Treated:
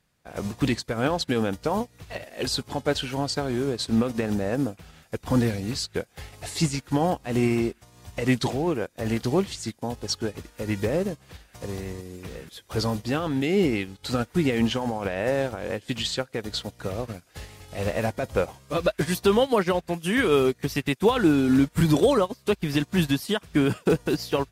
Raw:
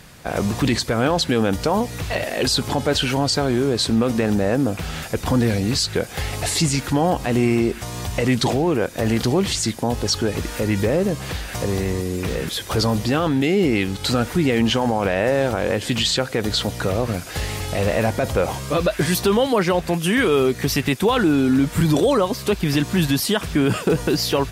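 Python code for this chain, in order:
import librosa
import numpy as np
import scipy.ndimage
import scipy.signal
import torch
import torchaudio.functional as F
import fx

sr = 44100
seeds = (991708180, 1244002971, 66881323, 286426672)

y = fx.upward_expand(x, sr, threshold_db=-32.0, expansion=2.5)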